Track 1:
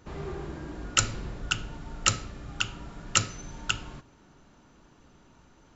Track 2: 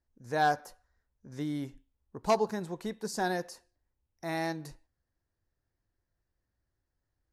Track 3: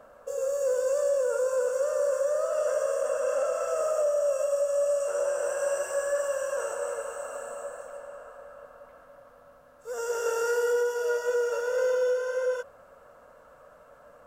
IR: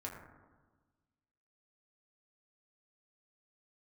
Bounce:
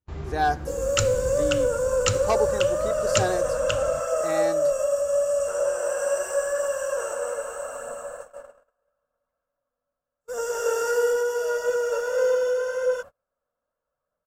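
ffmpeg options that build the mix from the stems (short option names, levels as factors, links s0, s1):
-filter_complex "[0:a]equalizer=f=75:t=o:w=1.2:g=11,volume=0.841[s0];[1:a]aecho=1:1:2.6:0.52,volume=1.12[s1];[2:a]bass=f=250:g=4,treble=f=4000:g=2,aphaser=in_gain=1:out_gain=1:delay=4.3:decay=0.24:speed=0.8:type=triangular,adelay=400,volume=1.33[s2];[s0][s1][s2]amix=inputs=3:normalize=0,agate=range=0.02:threshold=0.0141:ratio=16:detection=peak"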